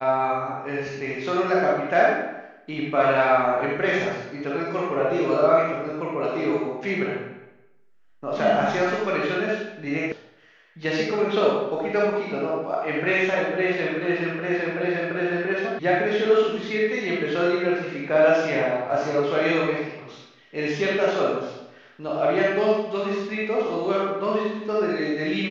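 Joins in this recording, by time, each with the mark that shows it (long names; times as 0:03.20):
0:10.12: cut off before it has died away
0:15.79: cut off before it has died away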